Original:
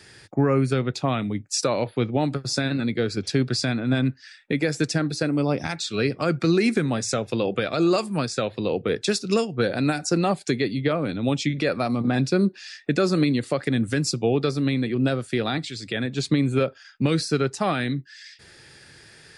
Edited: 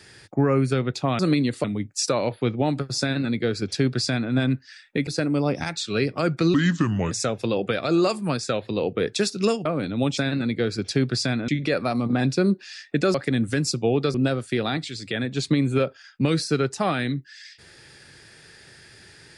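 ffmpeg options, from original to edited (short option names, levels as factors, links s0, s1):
-filter_complex "[0:a]asplit=11[s0][s1][s2][s3][s4][s5][s6][s7][s8][s9][s10];[s0]atrim=end=1.192[s11];[s1]atrim=start=13.088:end=13.542[s12];[s2]atrim=start=1.188:end=4.622[s13];[s3]atrim=start=5.098:end=6.574[s14];[s4]atrim=start=6.57:end=7,asetpts=PTS-STARTPTS,asetrate=33075,aresample=44100[s15];[s5]atrim=start=6.996:end=9.542[s16];[s6]atrim=start=10.908:end=11.432[s17];[s7]atrim=start=2.558:end=3.872[s18];[s8]atrim=start=11.428:end=13.092[s19];[s9]atrim=start=13.538:end=14.542[s20];[s10]atrim=start=14.948[s21];[s11][s12]acrossfade=d=0.004:c1=hsin:c2=hsin[s22];[s22][s13]acrossfade=d=0.004:c1=hsin:c2=hsin[s23];[s23][s14]acrossfade=d=0.004:c1=hsin:c2=hsin[s24];[s24][s15]acrossfade=d=0.004:c1=hsin:c2=hsin[s25];[s25][s16]acrossfade=d=0.004:c1=hsin:c2=hsin[s26];[s26][s17]acrossfade=d=0.004:c1=hsin:c2=hsin[s27];[s27][s18]acrossfade=d=0.004:c1=hsin:c2=hsin[s28];[s28][s19]acrossfade=d=0.004:c1=hsin:c2=hsin[s29];[s29][s20]acrossfade=d=0.004:c1=hsin:c2=hsin[s30];[s30][s21]acrossfade=d=0.004:c1=hsin:c2=hsin"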